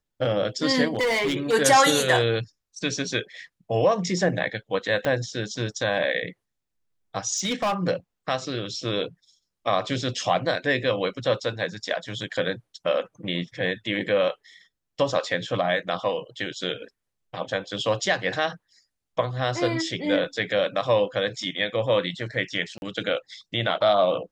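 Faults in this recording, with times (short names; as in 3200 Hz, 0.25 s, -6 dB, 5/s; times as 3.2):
0.95–1.54 clipped -20 dBFS
5.05 pop -13 dBFS
7.36–7.74 clipped -20 dBFS
22.78–22.82 gap 41 ms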